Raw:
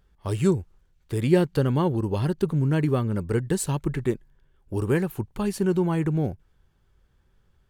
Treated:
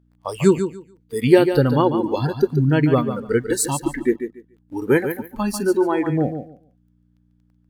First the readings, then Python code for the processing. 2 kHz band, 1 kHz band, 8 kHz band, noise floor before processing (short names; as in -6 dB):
+8.5 dB, +8.5 dB, +8.5 dB, -65 dBFS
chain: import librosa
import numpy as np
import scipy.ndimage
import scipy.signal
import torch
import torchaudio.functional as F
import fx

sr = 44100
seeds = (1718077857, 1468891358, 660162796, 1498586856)

p1 = fx.dynamic_eq(x, sr, hz=170.0, q=6.9, threshold_db=-40.0, ratio=4.0, max_db=-6)
p2 = fx.add_hum(p1, sr, base_hz=60, snr_db=14)
p3 = fx.low_shelf(p2, sr, hz=110.0, db=-8.0)
p4 = np.where(np.abs(p3) >= 10.0 ** (-36.5 / 20.0), p3, 0.0)
p5 = p3 + (p4 * 10.0 ** (-4.0 / 20.0))
p6 = fx.noise_reduce_blind(p5, sr, reduce_db=19)
p7 = p6 + fx.echo_feedback(p6, sr, ms=144, feedback_pct=19, wet_db=-9, dry=0)
y = p7 * 10.0 ** (4.5 / 20.0)